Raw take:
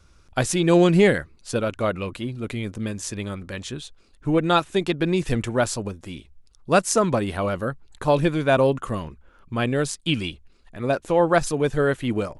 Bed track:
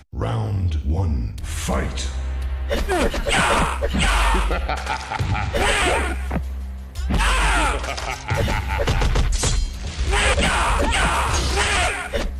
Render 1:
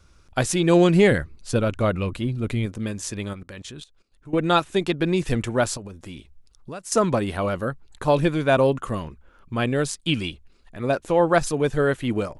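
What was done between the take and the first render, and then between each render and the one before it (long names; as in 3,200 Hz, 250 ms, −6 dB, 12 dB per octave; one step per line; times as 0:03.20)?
0:01.11–0:02.66: low-shelf EQ 170 Hz +9.5 dB
0:03.33–0:04.39: output level in coarse steps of 19 dB
0:05.77–0:06.92: downward compressor, threshold −33 dBFS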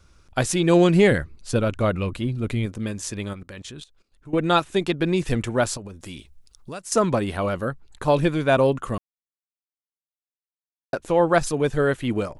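0:06.00–0:06.80: high-shelf EQ 3,500 Hz +8.5 dB
0:08.98–0:10.93: silence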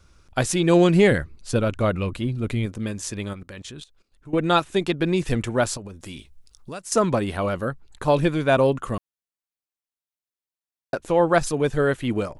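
0:06.10–0:06.71: double-tracking delay 20 ms −13.5 dB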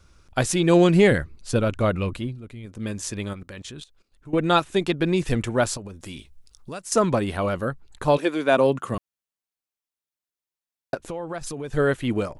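0:02.13–0:02.92: duck −14.5 dB, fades 0.29 s
0:08.16–0:08.94: high-pass filter 350 Hz → 88 Hz 24 dB per octave
0:10.94–0:11.74: downward compressor 8 to 1, threshold −28 dBFS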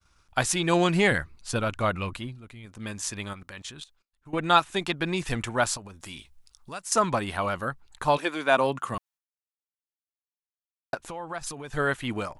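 downward expander −49 dBFS
low shelf with overshoot 650 Hz −6.5 dB, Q 1.5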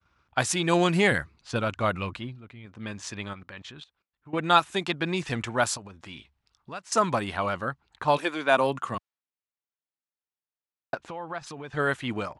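low-pass that shuts in the quiet parts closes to 2,800 Hz, open at −19.5 dBFS
high-pass filter 77 Hz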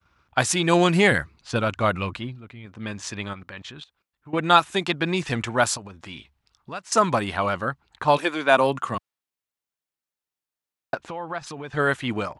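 level +4 dB
brickwall limiter −3 dBFS, peak gain reduction 1.5 dB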